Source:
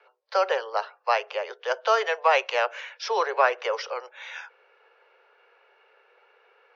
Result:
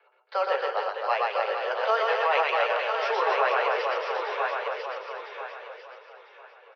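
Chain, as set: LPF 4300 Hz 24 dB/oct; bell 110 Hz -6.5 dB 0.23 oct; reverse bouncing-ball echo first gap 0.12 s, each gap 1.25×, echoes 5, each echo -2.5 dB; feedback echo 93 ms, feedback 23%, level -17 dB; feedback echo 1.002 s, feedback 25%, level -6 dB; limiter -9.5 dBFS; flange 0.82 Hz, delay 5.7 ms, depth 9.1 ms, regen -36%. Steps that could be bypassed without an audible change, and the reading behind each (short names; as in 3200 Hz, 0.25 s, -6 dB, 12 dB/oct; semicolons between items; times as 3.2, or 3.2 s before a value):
bell 110 Hz: input band starts at 340 Hz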